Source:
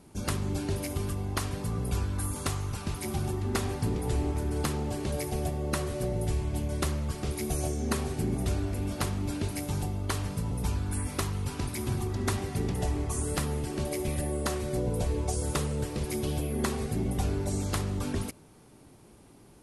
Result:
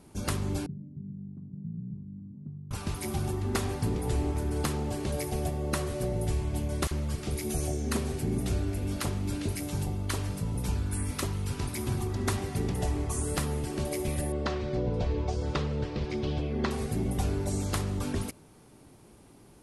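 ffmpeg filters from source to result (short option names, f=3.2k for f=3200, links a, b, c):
-filter_complex "[0:a]asettb=1/sr,asplit=3[a][b][c];[a]atrim=end=0.664[d];[b]atrim=start=0.66:end=2.71,asetpts=PTS-STARTPTS,afade=t=in:d=0.004:c=qsin,afade=t=out:st=2.046:d=0.004:c=qsin,asuperpass=centerf=170:order=4:qfactor=2.2[e];[c]atrim=start=2.706[f];[d][e]acrossfade=d=0.004:c1=hsin:c2=qsin[g];[g][f]acrossfade=d=0.004:c1=qsin:c2=hsin,asettb=1/sr,asplit=3[h][i][j];[h]atrim=end=6.874[k];[i]atrim=start=6.87:end=11.6,asetpts=PTS-STARTPTS,afade=t=in:d=0.004:c=qsin,afade=t=out:st=4.726:d=0.004:c=qsin,acrossover=split=980[l][m];[l]adelay=40[n];[n][m]amix=inputs=2:normalize=0,atrim=end_sample=208593[o];[j]atrim=start=11.596[p];[k][o]acrossfade=d=0.004:c1=hsin:c2=qsin[q];[q][p]acrossfade=d=0.004:c1=qsin:c2=hsin,asettb=1/sr,asplit=3[r][s][t];[r]atrim=end=14.324[u];[s]atrim=start=14.32:end=16.71,asetpts=PTS-STARTPTS,afade=t=in:d=0.004:c=qsin,afade=t=out:st=2.386:d=0.004:c=qsin,lowpass=f=4.9k:w=0.5412,lowpass=f=4.9k:w=1.3066[v];[t]atrim=start=16.706[w];[u][v]acrossfade=d=0.004:c1=hsin:c2=qsin[x];[x][w]acrossfade=d=0.004:c1=qsin:c2=hsin"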